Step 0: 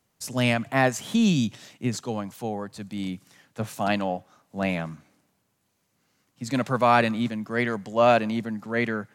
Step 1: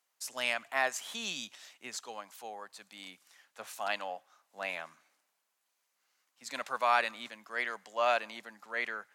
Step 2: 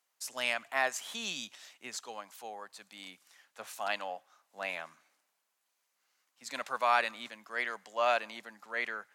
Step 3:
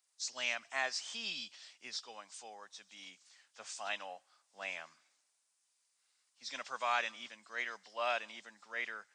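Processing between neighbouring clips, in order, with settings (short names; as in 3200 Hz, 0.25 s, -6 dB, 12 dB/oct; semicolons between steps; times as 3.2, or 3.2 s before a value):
HPF 850 Hz 12 dB/oct; gain -5 dB
nothing audible
nonlinear frequency compression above 2800 Hz 1.5:1; pre-emphasis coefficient 0.8; gain +5.5 dB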